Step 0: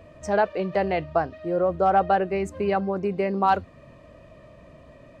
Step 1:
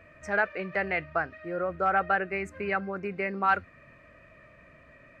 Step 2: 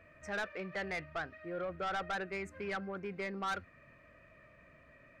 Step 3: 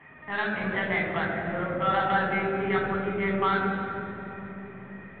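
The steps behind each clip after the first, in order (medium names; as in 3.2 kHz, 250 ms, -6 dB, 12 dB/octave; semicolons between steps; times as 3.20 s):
high-order bell 1.8 kHz +13.5 dB 1.2 oct; trim -8.5 dB
saturation -26 dBFS, distortion -8 dB; trim -6 dB
LPC vocoder at 8 kHz pitch kept; reverberation RT60 3.5 s, pre-delay 3 ms, DRR -1 dB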